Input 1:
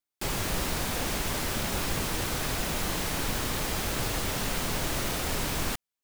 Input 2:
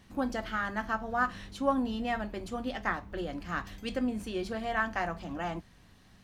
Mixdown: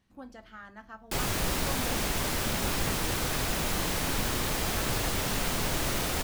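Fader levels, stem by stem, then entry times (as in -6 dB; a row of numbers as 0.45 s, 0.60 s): +0.5 dB, -14.0 dB; 0.90 s, 0.00 s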